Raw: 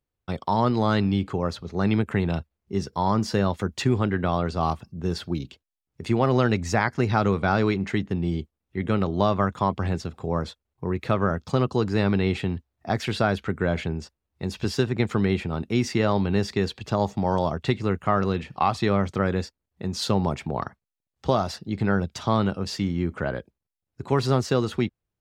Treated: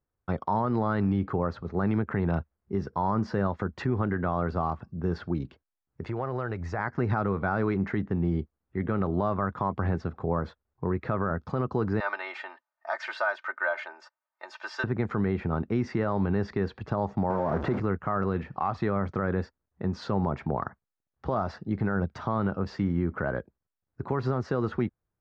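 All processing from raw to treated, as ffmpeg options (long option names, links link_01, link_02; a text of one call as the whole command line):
ffmpeg -i in.wav -filter_complex "[0:a]asettb=1/sr,asplit=3[link_01][link_02][link_03];[link_01]atrim=end=6.044[link_04];[link_02]atrim=start=6.04:end=6.79,asetpts=PTS-STARTPTS,afade=type=in:duration=0.004:curve=qsin,afade=type=out:start_time=0.746:duration=0.004:curve=qsin,equalizer=frequency=230:width_type=o:width=0.56:gain=-9,acompressor=threshold=-30dB:ratio=3:attack=3.2:release=140:knee=1:detection=peak[link_05];[link_03]atrim=start=6.786[link_06];[link_04][link_05]acrossfade=duration=0.004:curve1=hsin:curve2=qsin[link_07];[link_07][link_06]acrossfade=duration=0.004:curve1=qsin:curve2=hsin,asettb=1/sr,asplit=3[link_08][link_09][link_10];[link_08]atrim=end=12.004[link_11];[link_09]atrim=start=12:end=14.84,asetpts=PTS-STARTPTS,afade=type=in:duration=0.004:curve=qsin,afade=type=out:start_time=2.836:duration=0.004:curve=qsin,highpass=frequency=710:width=0.5412,highpass=frequency=710:width=1.3066,highshelf=frequency=7900:gain=9.5,aecho=1:1:3.3:0.83,atrim=end_sample=125244[link_12];[link_10]atrim=start=14.836[link_13];[link_11][link_12]acrossfade=duration=0.004:curve1=hsin:curve2=qsin[link_14];[link_14][link_13]acrossfade=duration=0.004:curve1=qsin:curve2=hsin,asettb=1/sr,asplit=3[link_15][link_16][link_17];[link_15]atrim=end=17.304[link_18];[link_16]atrim=start=17.3:end=17.8,asetpts=PTS-STARTPTS,afade=type=in:duration=0.004:curve=qsin,afade=type=out:start_time=0.496:duration=0.004:curve=qsin,aeval=exprs='val(0)+0.5*0.075*sgn(val(0))':channel_layout=same,highpass=frequency=340:poles=1,tiltshelf=frequency=1100:gain=8[link_19];[link_17]atrim=start=17.796[link_20];[link_18][link_19]acrossfade=duration=0.004:curve1=hsin:curve2=qsin[link_21];[link_21][link_20]acrossfade=duration=0.004:curve1=qsin:curve2=hsin,lowpass=frequency=5400:width=0.5412,lowpass=frequency=5400:width=1.3066,highshelf=frequency=2200:width_type=q:width=1.5:gain=-12,alimiter=limit=-17dB:level=0:latency=1:release=95" out.wav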